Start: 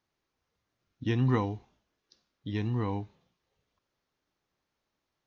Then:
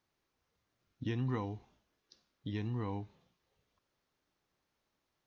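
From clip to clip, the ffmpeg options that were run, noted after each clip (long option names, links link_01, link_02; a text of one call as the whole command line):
ffmpeg -i in.wav -af "acompressor=threshold=-39dB:ratio=2" out.wav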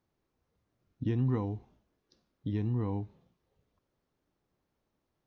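ffmpeg -i in.wav -af "tiltshelf=frequency=910:gain=6.5" out.wav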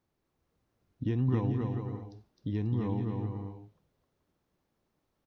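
ffmpeg -i in.wav -af "aecho=1:1:260|429|538.8|610.3|656.7:0.631|0.398|0.251|0.158|0.1" out.wav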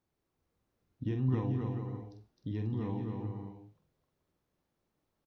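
ffmpeg -i in.wav -filter_complex "[0:a]asplit=2[link_01][link_02];[link_02]adelay=46,volume=-7dB[link_03];[link_01][link_03]amix=inputs=2:normalize=0,volume=-4dB" out.wav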